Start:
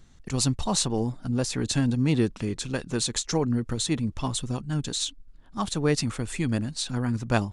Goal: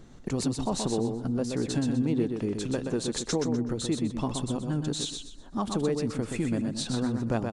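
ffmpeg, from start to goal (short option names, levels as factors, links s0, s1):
-filter_complex "[0:a]equalizer=f=400:w=0.45:g=12,acompressor=threshold=0.0316:ratio=3,asplit=2[s0][s1];[s1]aecho=0:1:125|250|375|500:0.531|0.154|0.0446|0.0129[s2];[s0][s2]amix=inputs=2:normalize=0"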